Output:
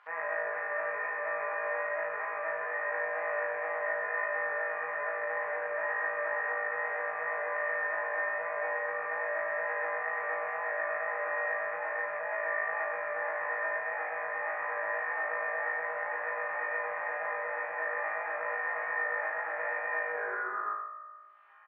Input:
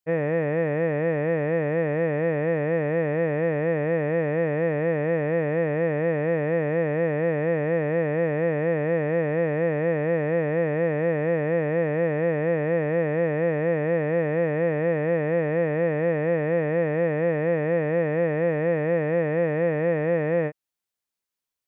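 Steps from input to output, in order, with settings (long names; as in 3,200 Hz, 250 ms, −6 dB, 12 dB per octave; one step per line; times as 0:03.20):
turntable brake at the end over 1.67 s
comb filter 4.9 ms, depth 48%
tape wow and flutter 17 cents
low-pass filter 1,700 Hz 24 dB per octave
repeating echo 129 ms, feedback 26%, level −3.5 dB
brickwall limiter −18.5 dBFS, peak gain reduction 8 dB
on a send: flutter between parallel walls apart 3.2 metres, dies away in 0.77 s
on the sum: upward compression, threshold −30 dBFS
Chebyshev high-pass filter 990 Hz, order 3
level +1.5 dB
Ogg Vorbis 64 kbit/s 44,100 Hz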